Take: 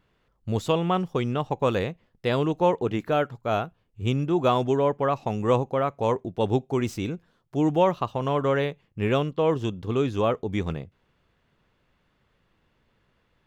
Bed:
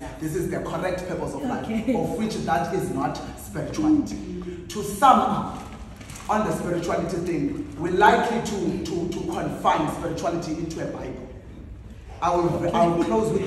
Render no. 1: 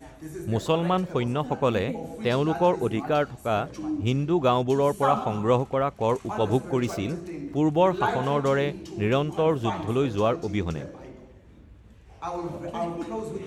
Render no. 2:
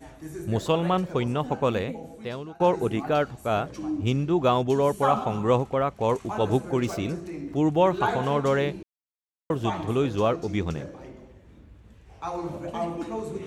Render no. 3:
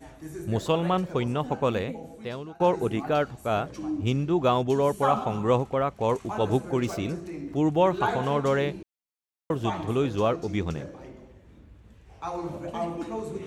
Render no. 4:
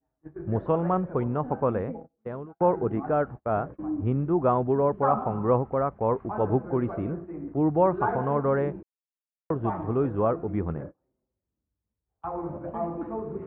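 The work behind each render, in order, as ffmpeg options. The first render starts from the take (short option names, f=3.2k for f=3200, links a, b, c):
-filter_complex "[1:a]volume=-10.5dB[a];[0:a][a]amix=inputs=2:normalize=0"
-filter_complex "[0:a]asplit=4[a][b][c][d];[a]atrim=end=2.6,asetpts=PTS-STARTPTS,afade=t=out:st=1.57:d=1.03:silence=0.0749894[e];[b]atrim=start=2.6:end=8.83,asetpts=PTS-STARTPTS,afade=t=in:d=0.004:c=hsin:silence=0.0749894,afade=t=out:st=6.226:d=0.004:c=hsin[f];[c]atrim=start=8.83:end=9.5,asetpts=PTS-STARTPTS,volume=0[g];[d]atrim=start=9.5,asetpts=PTS-STARTPTS,afade=t=in:d=0.004:c=hsin[h];[e][f][g][h]concat=n=4:v=0:a=1"
-af "volume=-1dB"
-af "lowpass=f=1.5k:w=0.5412,lowpass=f=1.5k:w=1.3066,agate=range=-34dB:threshold=-37dB:ratio=16:detection=peak"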